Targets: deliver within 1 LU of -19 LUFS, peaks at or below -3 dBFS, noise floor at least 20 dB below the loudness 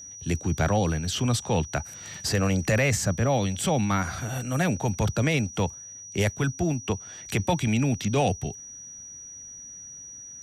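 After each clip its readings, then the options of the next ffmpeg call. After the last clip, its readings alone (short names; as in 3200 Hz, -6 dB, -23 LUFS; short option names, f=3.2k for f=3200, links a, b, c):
steady tone 5800 Hz; tone level -40 dBFS; loudness -26.0 LUFS; peak -14.0 dBFS; loudness target -19.0 LUFS
-> -af "bandreject=f=5.8k:w=30"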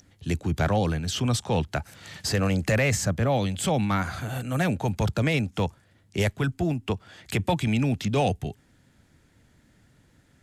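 steady tone none; loudness -26.5 LUFS; peak -14.5 dBFS; loudness target -19.0 LUFS
-> -af "volume=7.5dB"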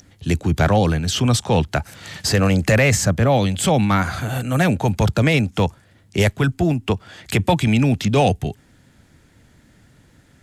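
loudness -19.0 LUFS; peak -7.0 dBFS; noise floor -54 dBFS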